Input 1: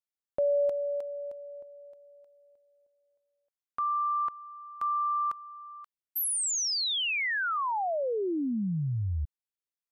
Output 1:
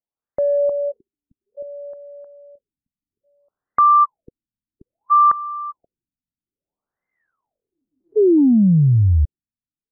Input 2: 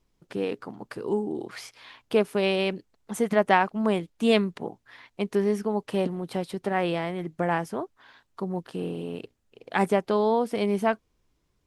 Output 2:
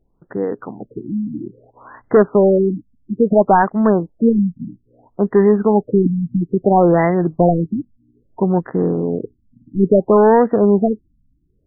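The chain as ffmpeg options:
ffmpeg -i in.wav -af "dynaudnorm=framelen=580:gausssize=5:maxgain=10dB,aeval=exprs='0.891*(cos(1*acos(clip(val(0)/0.891,-1,1)))-cos(1*PI/2))+0.251*(cos(5*acos(clip(val(0)/0.891,-1,1)))-cos(5*PI/2))':channel_layout=same,afftfilt=real='re*lt(b*sr/1024,280*pow(2100/280,0.5+0.5*sin(2*PI*0.6*pts/sr)))':imag='im*lt(b*sr/1024,280*pow(2100/280,0.5+0.5*sin(2*PI*0.6*pts/sr)))':win_size=1024:overlap=0.75" out.wav

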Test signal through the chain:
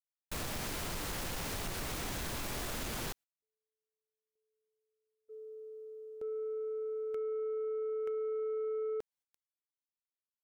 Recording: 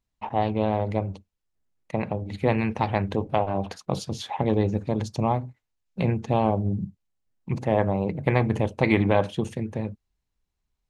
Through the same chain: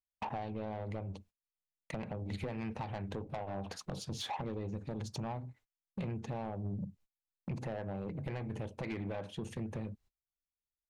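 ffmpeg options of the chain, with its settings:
ffmpeg -i in.wav -af "agate=range=-30dB:threshold=-52dB:ratio=16:detection=peak,acompressor=threshold=-37dB:ratio=12,asoftclip=type=tanh:threshold=-37dB,volume=5dB" out.wav

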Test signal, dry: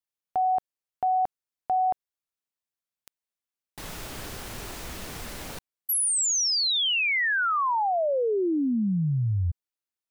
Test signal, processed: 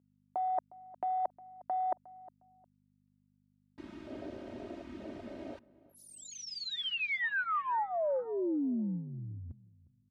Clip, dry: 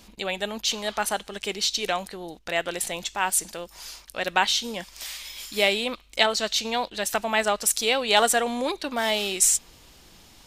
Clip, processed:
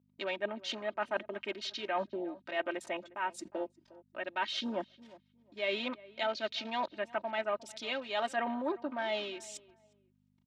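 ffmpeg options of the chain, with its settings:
ffmpeg -i in.wav -filter_complex "[0:a]afwtdn=0.02,agate=range=-30dB:threshold=-54dB:ratio=16:release=28:detection=peak,aecho=1:1:3.2:0.79,areverse,acompressor=threshold=-31dB:ratio=6:attack=30:release=424:knee=1:detection=rms,areverse,aeval=exprs='val(0)+0.000891*(sin(2*PI*50*n/s)+sin(2*PI*2*50*n/s)/2+sin(2*PI*3*50*n/s)/3+sin(2*PI*4*50*n/s)/4+sin(2*PI*5*50*n/s)/5)':channel_layout=same,highpass=180,lowpass=3000,asplit=2[link_01][link_02];[link_02]adelay=358,lowpass=frequency=1400:poles=1,volume=-19dB,asplit=2[link_03][link_04];[link_04]adelay=358,lowpass=frequency=1400:poles=1,volume=0.25[link_05];[link_03][link_05]amix=inputs=2:normalize=0[link_06];[link_01][link_06]amix=inputs=2:normalize=0" out.wav

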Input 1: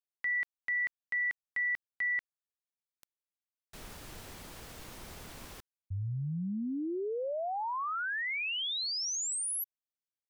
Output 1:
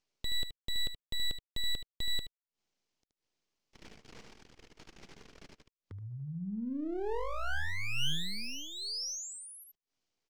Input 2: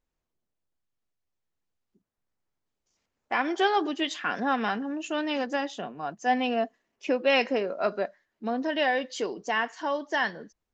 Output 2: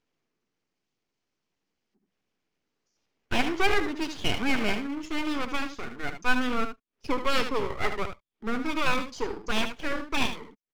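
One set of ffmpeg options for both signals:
ffmpeg -i in.wav -filter_complex "[0:a]agate=range=-42dB:threshold=-45dB:ratio=16:release=64:detection=rms,highpass=200,equalizer=frequency=450:width_type=q:width=4:gain=5,equalizer=frequency=760:width_type=q:width=4:gain=5,equalizer=frequency=1500:width_type=q:width=4:gain=8,equalizer=frequency=3500:width_type=q:width=4:gain=-8,lowpass=frequency=5800:width=0.5412,lowpass=frequency=5800:width=1.3066,aecho=1:1:75:0.355,acrossover=split=440|3300[link_01][link_02][link_03];[link_02]aeval=exprs='abs(val(0))':channel_layout=same[link_04];[link_01][link_04][link_03]amix=inputs=3:normalize=0,acompressor=mode=upward:threshold=-38dB:ratio=2.5:attack=0.11:release=115:knee=2.83:detection=peak" out.wav

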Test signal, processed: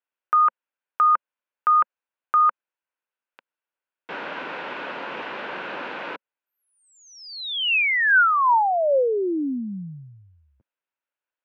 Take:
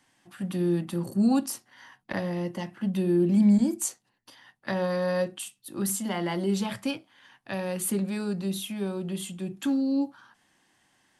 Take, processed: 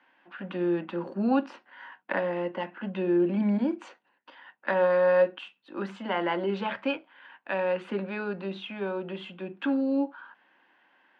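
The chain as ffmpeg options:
ffmpeg -i in.wav -af "highpass=frequency=220:width=0.5412,highpass=frequency=220:width=1.3066,equalizer=frequency=220:width_type=q:width=4:gain=-3,equalizer=frequency=540:width_type=q:width=4:gain=6,equalizer=frequency=950:width_type=q:width=4:gain=7,equalizer=frequency=1500:width_type=q:width=4:gain=9,equalizer=frequency=2600:width_type=q:width=4:gain=5,lowpass=frequency=3100:width=0.5412,lowpass=frequency=3100:width=1.3066" out.wav

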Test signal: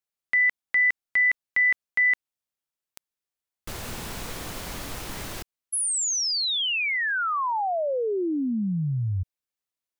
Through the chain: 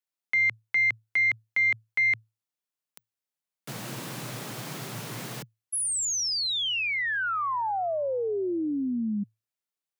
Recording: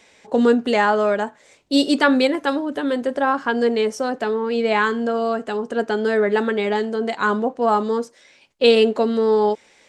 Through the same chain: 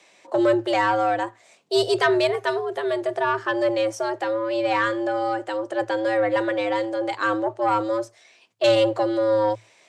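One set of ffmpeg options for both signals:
ffmpeg -i in.wav -af "aeval=exprs='(tanh(2.51*val(0)+0.2)-tanh(0.2))/2.51':channel_layout=same,afreqshift=110,volume=-2dB" out.wav

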